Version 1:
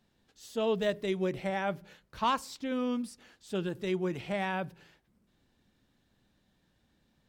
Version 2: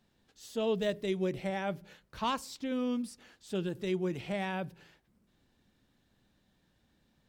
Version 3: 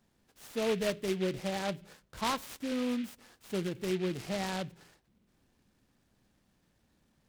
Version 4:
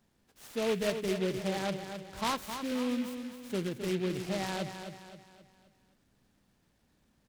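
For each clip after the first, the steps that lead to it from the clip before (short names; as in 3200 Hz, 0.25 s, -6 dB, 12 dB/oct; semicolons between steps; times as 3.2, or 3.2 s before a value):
dynamic EQ 1200 Hz, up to -5 dB, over -45 dBFS, Q 0.73
noise-modulated delay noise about 2400 Hz, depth 0.081 ms
feedback echo 0.263 s, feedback 43%, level -8.5 dB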